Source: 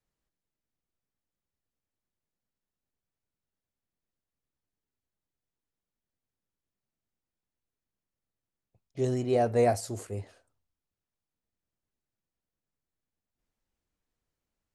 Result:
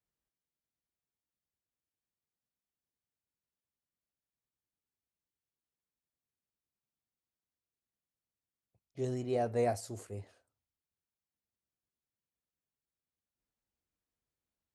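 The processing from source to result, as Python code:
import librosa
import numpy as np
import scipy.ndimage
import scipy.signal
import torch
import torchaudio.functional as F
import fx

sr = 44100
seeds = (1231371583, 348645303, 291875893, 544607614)

y = scipy.signal.sosfilt(scipy.signal.butter(2, 41.0, 'highpass', fs=sr, output='sos'), x)
y = y * 10.0 ** (-7.0 / 20.0)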